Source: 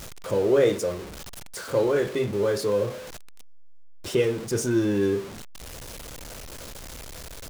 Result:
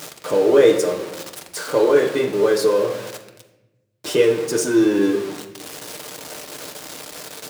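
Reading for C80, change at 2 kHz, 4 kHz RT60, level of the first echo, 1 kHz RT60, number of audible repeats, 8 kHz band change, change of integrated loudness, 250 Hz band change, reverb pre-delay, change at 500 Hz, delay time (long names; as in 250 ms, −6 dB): 11.0 dB, +7.0 dB, 0.65 s, no echo audible, 0.80 s, no echo audible, +7.0 dB, +6.5 dB, +6.5 dB, 6 ms, +7.0 dB, no echo audible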